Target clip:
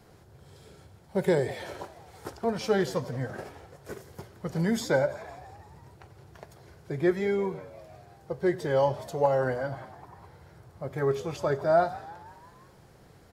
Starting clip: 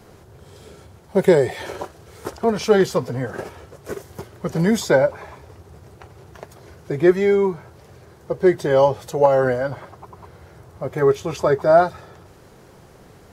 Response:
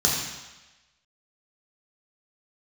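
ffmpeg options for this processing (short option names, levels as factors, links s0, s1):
-filter_complex "[0:a]asplit=6[s0][s1][s2][s3][s4][s5];[s1]adelay=170,afreqshift=78,volume=0.1[s6];[s2]adelay=340,afreqshift=156,volume=0.0603[s7];[s3]adelay=510,afreqshift=234,volume=0.0359[s8];[s4]adelay=680,afreqshift=312,volume=0.0216[s9];[s5]adelay=850,afreqshift=390,volume=0.013[s10];[s0][s6][s7][s8][s9][s10]amix=inputs=6:normalize=0,asplit=2[s11][s12];[1:a]atrim=start_sample=2205,afade=t=out:st=0.15:d=0.01,atrim=end_sample=7056,asetrate=38808,aresample=44100[s13];[s12][s13]afir=irnorm=-1:irlink=0,volume=0.0422[s14];[s11][s14]amix=inputs=2:normalize=0,volume=0.376"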